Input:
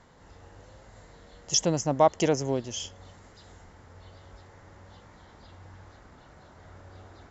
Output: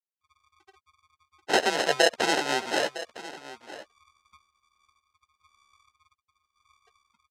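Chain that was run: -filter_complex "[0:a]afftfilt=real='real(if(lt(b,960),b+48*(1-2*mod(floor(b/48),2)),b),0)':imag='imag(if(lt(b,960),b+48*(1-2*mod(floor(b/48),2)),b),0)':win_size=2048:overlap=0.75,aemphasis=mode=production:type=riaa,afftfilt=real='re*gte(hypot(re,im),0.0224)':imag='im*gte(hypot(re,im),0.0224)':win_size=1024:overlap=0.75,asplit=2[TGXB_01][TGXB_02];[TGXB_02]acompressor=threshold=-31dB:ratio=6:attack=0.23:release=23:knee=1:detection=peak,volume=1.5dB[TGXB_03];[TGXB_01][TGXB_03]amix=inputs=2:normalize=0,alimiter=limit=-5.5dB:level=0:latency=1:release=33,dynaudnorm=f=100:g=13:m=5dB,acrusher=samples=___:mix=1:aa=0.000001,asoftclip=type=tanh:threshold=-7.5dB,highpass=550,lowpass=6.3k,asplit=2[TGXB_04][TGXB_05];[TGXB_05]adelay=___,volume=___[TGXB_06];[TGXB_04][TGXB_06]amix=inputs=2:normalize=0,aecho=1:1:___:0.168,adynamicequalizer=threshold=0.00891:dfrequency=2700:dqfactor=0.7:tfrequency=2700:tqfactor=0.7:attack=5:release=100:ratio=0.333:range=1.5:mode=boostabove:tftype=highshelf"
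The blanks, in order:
38, 13, -10.5dB, 958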